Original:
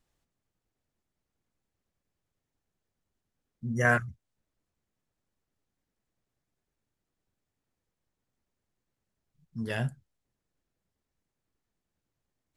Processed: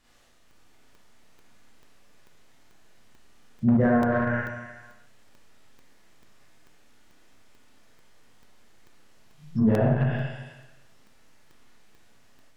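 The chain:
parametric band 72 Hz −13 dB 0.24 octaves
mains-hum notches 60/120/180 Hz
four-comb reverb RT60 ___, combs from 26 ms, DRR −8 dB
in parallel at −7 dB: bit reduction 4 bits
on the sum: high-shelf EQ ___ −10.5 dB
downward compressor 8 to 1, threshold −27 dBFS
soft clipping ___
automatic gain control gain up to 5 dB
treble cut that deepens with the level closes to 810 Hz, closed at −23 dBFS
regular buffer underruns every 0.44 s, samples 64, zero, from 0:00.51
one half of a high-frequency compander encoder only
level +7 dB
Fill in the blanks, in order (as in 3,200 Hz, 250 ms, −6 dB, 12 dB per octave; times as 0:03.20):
0.99 s, 5,500 Hz, −21.5 dBFS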